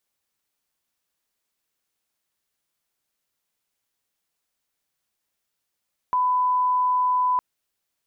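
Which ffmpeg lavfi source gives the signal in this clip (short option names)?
-f lavfi -i "sine=f=1000:d=1.26:r=44100,volume=0.06dB"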